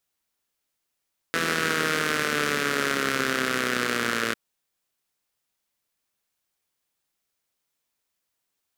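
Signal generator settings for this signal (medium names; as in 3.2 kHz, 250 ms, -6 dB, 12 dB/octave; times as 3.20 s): four-cylinder engine model, changing speed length 3.00 s, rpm 5000, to 3400, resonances 260/420/1400 Hz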